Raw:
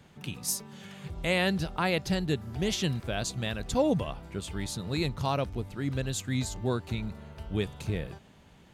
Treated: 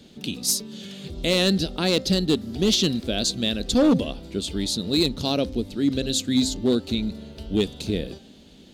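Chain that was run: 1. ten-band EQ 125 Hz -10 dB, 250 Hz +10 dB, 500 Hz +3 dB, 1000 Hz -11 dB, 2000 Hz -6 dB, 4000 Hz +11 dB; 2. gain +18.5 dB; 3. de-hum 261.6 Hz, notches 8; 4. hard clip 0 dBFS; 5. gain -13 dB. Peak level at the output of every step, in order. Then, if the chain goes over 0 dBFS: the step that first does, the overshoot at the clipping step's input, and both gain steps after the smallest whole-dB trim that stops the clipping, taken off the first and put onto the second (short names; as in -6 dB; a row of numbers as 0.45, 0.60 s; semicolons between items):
-10.5, +8.0, +7.5, 0.0, -13.0 dBFS; step 2, 7.5 dB; step 2 +10.5 dB, step 5 -5 dB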